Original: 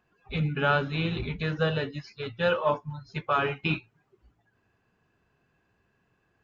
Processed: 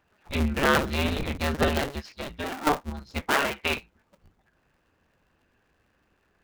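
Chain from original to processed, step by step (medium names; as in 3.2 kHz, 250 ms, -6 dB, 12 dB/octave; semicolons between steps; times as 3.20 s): cycle switcher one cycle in 2, inverted; 2.16–2.67 s: compression 5:1, threshold -34 dBFS, peak gain reduction 13 dB; 3.30–3.77 s: bass shelf 240 Hz -10.5 dB; trim +2.5 dB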